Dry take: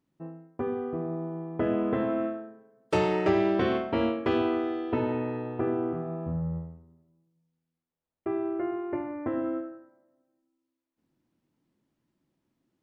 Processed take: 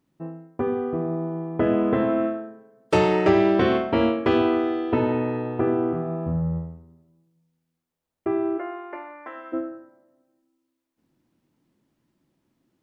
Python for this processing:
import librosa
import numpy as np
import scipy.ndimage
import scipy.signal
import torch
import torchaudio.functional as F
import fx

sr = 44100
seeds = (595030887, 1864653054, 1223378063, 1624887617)

y = fx.highpass(x, sr, hz=fx.line((8.57, 570.0), (9.52, 1400.0)), slope=12, at=(8.57, 9.52), fade=0.02)
y = y * librosa.db_to_amplitude(6.0)